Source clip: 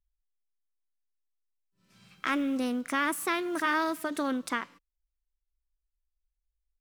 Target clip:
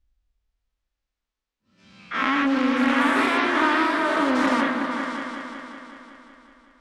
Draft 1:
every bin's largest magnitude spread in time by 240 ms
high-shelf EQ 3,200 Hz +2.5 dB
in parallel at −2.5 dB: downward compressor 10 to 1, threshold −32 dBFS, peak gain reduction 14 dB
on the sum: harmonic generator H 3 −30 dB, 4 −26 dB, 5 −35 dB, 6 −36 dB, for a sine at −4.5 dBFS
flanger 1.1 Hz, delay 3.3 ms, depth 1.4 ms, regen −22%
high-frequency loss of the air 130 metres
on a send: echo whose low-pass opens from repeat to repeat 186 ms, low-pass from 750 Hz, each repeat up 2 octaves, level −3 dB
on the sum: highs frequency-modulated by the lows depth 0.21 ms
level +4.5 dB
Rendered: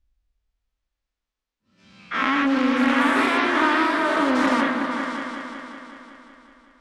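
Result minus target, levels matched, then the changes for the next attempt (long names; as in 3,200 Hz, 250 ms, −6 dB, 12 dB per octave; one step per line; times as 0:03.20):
downward compressor: peak gain reduction −9 dB
change: downward compressor 10 to 1, threshold −42 dBFS, peak gain reduction 23 dB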